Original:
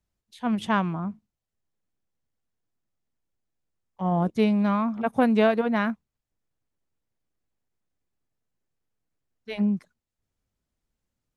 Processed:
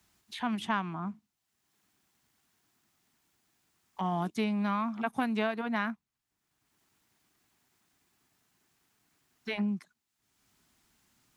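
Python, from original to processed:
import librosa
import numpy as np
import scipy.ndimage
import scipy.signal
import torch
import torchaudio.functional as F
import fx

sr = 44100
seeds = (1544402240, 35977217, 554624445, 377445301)

y = fx.highpass(x, sr, hz=340.0, slope=6)
y = fx.peak_eq(y, sr, hz=520.0, db=-14.5, octaves=0.47)
y = fx.band_squash(y, sr, depth_pct=70)
y = y * librosa.db_to_amplitude(-2.5)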